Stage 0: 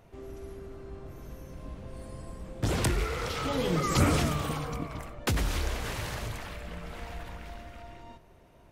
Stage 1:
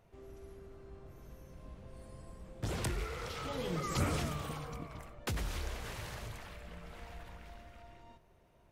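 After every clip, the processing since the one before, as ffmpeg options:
ffmpeg -i in.wav -af "equalizer=frequency=280:width_type=o:width=0.31:gain=-4,volume=-8.5dB" out.wav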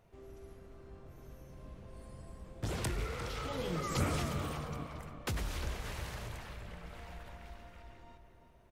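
ffmpeg -i in.wav -filter_complex "[0:a]asplit=2[link_01][link_02];[link_02]adelay=351,lowpass=frequency=2700:poles=1,volume=-8dB,asplit=2[link_03][link_04];[link_04]adelay=351,lowpass=frequency=2700:poles=1,volume=0.42,asplit=2[link_05][link_06];[link_06]adelay=351,lowpass=frequency=2700:poles=1,volume=0.42,asplit=2[link_07][link_08];[link_08]adelay=351,lowpass=frequency=2700:poles=1,volume=0.42,asplit=2[link_09][link_10];[link_10]adelay=351,lowpass=frequency=2700:poles=1,volume=0.42[link_11];[link_01][link_03][link_05][link_07][link_09][link_11]amix=inputs=6:normalize=0" out.wav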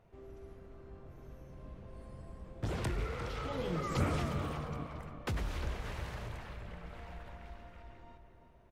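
ffmpeg -i in.wav -af "highshelf=frequency=4400:gain=-11,volume=1dB" out.wav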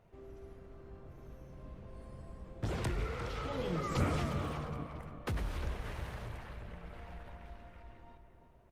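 ffmpeg -i in.wav -ar 48000 -c:a libopus -b:a 48k out.opus

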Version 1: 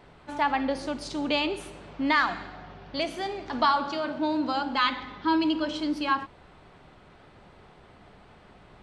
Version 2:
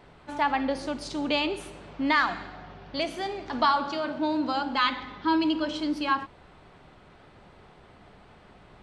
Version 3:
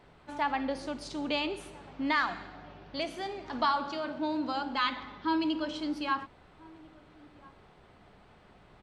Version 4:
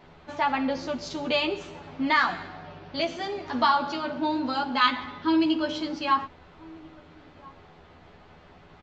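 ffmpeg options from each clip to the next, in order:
ffmpeg -i in.wav -af anull out.wav
ffmpeg -i in.wav -filter_complex "[0:a]asplit=2[link_01][link_02];[link_02]adelay=1341,volume=-23dB,highshelf=frequency=4000:gain=-30.2[link_03];[link_01][link_03]amix=inputs=2:normalize=0,volume=-5dB" out.wav
ffmpeg -i in.wav -filter_complex "[0:a]asplit=2[link_01][link_02];[link_02]adelay=12,volume=-2dB[link_03];[link_01][link_03]amix=inputs=2:normalize=0,aresample=16000,aresample=44100,volume=4dB" out.wav

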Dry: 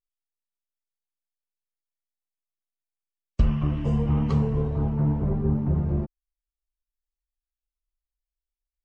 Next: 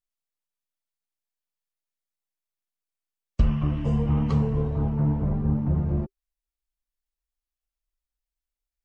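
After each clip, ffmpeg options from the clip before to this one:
ffmpeg -i in.wav -af "bandreject=frequency=390:width=12" out.wav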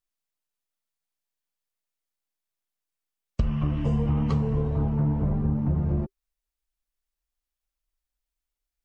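ffmpeg -i in.wav -af "acompressor=threshold=-22dB:ratio=6,volume=2dB" out.wav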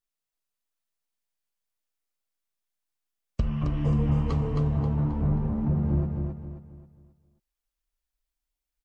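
ffmpeg -i in.wav -af "aecho=1:1:267|534|801|1068|1335:0.631|0.233|0.0864|0.032|0.0118,volume=-2dB" out.wav

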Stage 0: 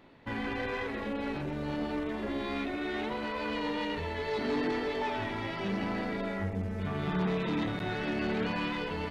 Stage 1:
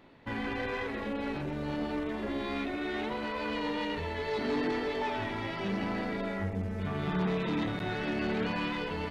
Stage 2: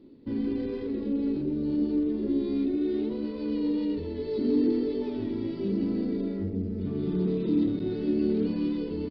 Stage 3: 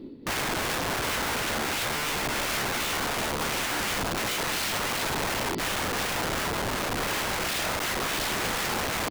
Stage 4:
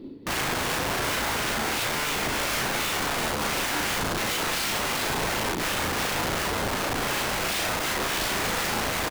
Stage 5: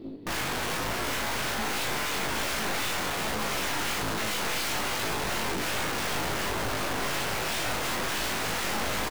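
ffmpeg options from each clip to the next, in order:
ffmpeg -i in.wav -af anull out.wav
ffmpeg -i in.wav -af "firequalizer=gain_entry='entry(160,0);entry(250,10);entry(360,9);entry(690,-15);entry(1200,-16);entry(1700,-19);entry(4700,-2);entry(6700,-27);entry(11000,-17)':delay=0.05:min_phase=1" out.wav
ffmpeg -i in.wav -filter_complex "[0:a]asplit=2[link_01][link_02];[link_02]alimiter=level_in=2dB:limit=-24dB:level=0:latency=1:release=261,volume=-2dB,volume=-1.5dB[link_03];[link_01][link_03]amix=inputs=2:normalize=0,tremolo=f=2.8:d=0.45,aeval=exprs='(mod(33.5*val(0)+1,2)-1)/33.5':channel_layout=same,volume=6.5dB" out.wav
ffmpeg -i in.wav -filter_complex "[0:a]asplit=2[link_01][link_02];[link_02]adelay=37,volume=-3.5dB[link_03];[link_01][link_03]amix=inputs=2:normalize=0" out.wav
ffmpeg -i in.wav -af "flanger=delay=18:depth=4.5:speed=1.2,aeval=exprs='(tanh(50.1*val(0)+0.55)-tanh(0.55))/50.1':channel_layout=same,aecho=1:1:1010:0.335,volume=6dB" out.wav

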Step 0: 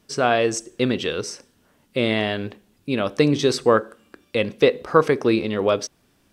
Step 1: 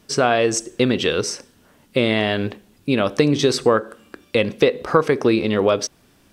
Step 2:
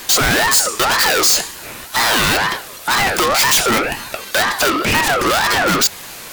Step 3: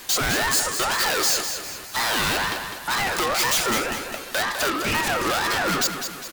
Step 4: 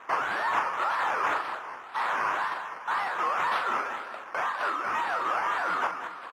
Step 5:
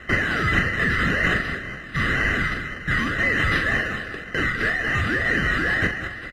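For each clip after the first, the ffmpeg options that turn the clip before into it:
ffmpeg -i in.wav -af "acompressor=threshold=-21dB:ratio=2.5,volume=6.5dB" out.wav
ffmpeg -i in.wav -filter_complex "[0:a]asplit=2[link_01][link_02];[link_02]highpass=frequency=720:poles=1,volume=39dB,asoftclip=type=tanh:threshold=-1dB[link_03];[link_01][link_03]amix=inputs=2:normalize=0,lowpass=frequency=2900:poles=1,volume=-6dB,aemphasis=mode=production:type=75fm,aeval=exprs='val(0)*sin(2*PI*1100*n/s+1100*0.3/2*sin(2*PI*2*n/s))':channel_layout=same,volume=-4.5dB" out.wav
ffmpeg -i in.wav -af "aecho=1:1:203|406|609|812|1015:0.398|0.179|0.0806|0.0363|0.0163,volume=-8.5dB" out.wav
ffmpeg -i in.wav -filter_complex "[0:a]acrusher=samples=9:mix=1:aa=0.000001:lfo=1:lforange=5.4:lforate=1.9,bandpass=frequency=1100:width_type=q:width=2.2:csg=0,asplit=2[link_01][link_02];[link_02]adelay=42,volume=-8dB[link_03];[link_01][link_03]amix=inputs=2:normalize=0" out.wav
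ffmpeg -i in.wav -af "afftfilt=real='real(if(between(b,1,1008),(2*floor((b-1)/48)+1)*48-b,b),0)':imag='imag(if(between(b,1,1008),(2*floor((b-1)/48)+1)*48-b,b),0)*if(between(b,1,1008),-1,1)':win_size=2048:overlap=0.75,volume=6.5dB" out.wav

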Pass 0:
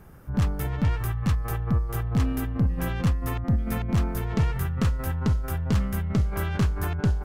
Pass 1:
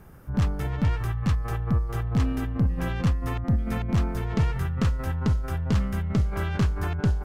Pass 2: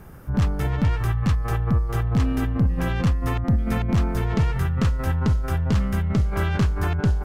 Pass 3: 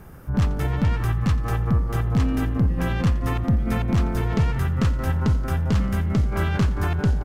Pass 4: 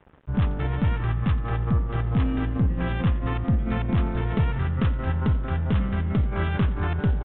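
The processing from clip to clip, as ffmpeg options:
ffmpeg -i in.wav -filter_complex "[0:a]acrossover=split=7600[link_01][link_02];[link_02]acompressor=threshold=-52dB:ratio=4:attack=1:release=60[link_03];[link_01][link_03]amix=inputs=2:normalize=0" out.wav
ffmpeg -i in.wav -af "alimiter=limit=-18.5dB:level=0:latency=1:release=221,volume=5.5dB" out.wav
ffmpeg -i in.wav -filter_complex "[0:a]asplit=7[link_01][link_02][link_03][link_04][link_05][link_06][link_07];[link_02]adelay=87,afreqshift=48,volume=-18dB[link_08];[link_03]adelay=174,afreqshift=96,volume=-22dB[link_09];[link_04]adelay=261,afreqshift=144,volume=-26dB[link_10];[link_05]adelay=348,afreqshift=192,volume=-30dB[link_11];[link_06]adelay=435,afreqshift=240,volume=-34.1dB[link_12];[link_07]adelay=522,afreqshift=288,volume=-38.1dB[link_13];[link_01][link_08][link_09][link_10][link_11][link_12][link_13]amix=inputs=7:normalize=0" out.wav
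ffmpeg -i in.wav -af "aeval=exprs='sgn(val(0))*max(abs(val(0))-0.00841,0)':channel_layout=same,aresample=8000,aresample=44100,volume=-1.5dB" out.wav

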